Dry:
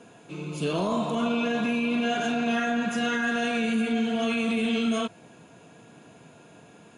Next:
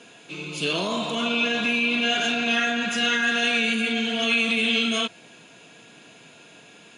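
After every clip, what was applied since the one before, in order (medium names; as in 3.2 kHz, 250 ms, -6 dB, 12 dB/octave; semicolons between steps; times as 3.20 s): frequency weighting D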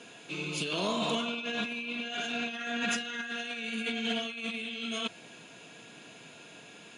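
compressor with a negative ratio -27 dBFS, ratio -0.5; trim -6 dB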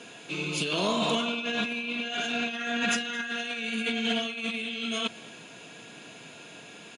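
delay 221 ms -21.5 dB; trim +4 dB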